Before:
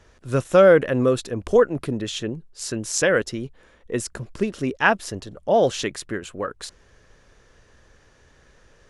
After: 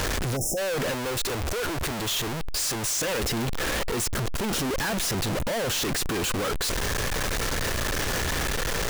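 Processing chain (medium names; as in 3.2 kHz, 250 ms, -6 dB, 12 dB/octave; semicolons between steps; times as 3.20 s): one-bit comparator; 0.36–0.58 s: spectral selection erased 830–5100 Hz; 0.92–2.98 s: peaking EQ 210 Hz -7 dB 1.3 oct; trim -3.5 dB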